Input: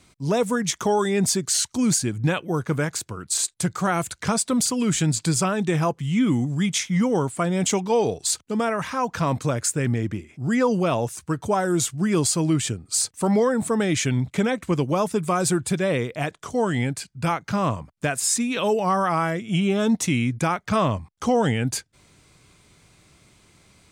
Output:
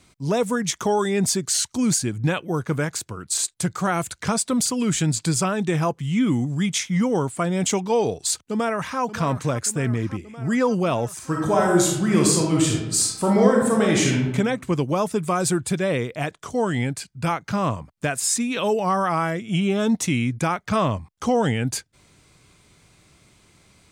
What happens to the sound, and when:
8.39–9 echo throw 0.58 s, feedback 75%, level -13 dB
11.15–14.26 reverb throw, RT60 0.89 s, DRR -1.5 dB

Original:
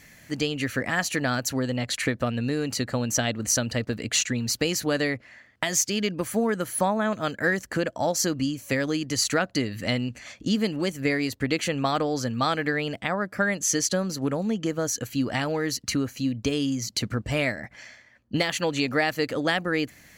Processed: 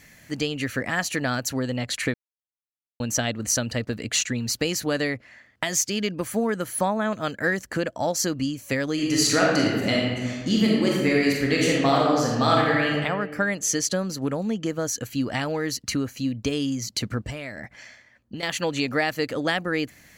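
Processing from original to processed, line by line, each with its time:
2.14–3 mute
8.93–12.94 reverb throw, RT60 1.4 s, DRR -3.5 dB
17.3–18.43 compressor 10:1, threshold -30 dBFS

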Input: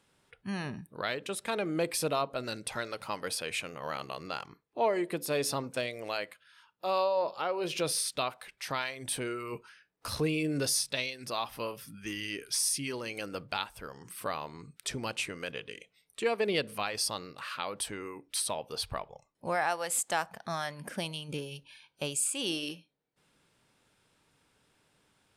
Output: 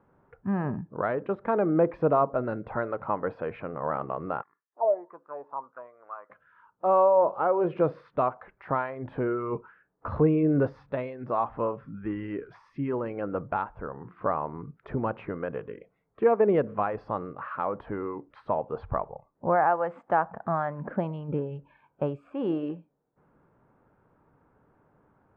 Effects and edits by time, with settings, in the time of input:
4.42–6.3 auto-wah 610–1900 Hz, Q 7.1, down, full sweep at -23.5 dBFS
whole clip: LPF 1300 Hz 24 dB/oct; gain +8.5 dB

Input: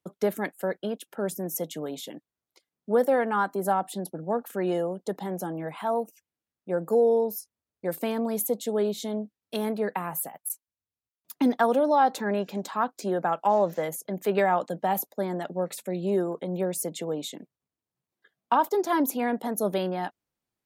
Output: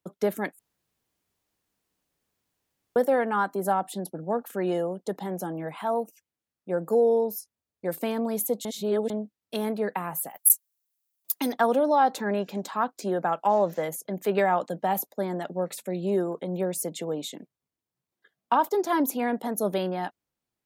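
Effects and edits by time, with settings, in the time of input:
0.59–2.96 room tone
8.65–9.1 reverse
10.3–11.53 RIAA curve recording

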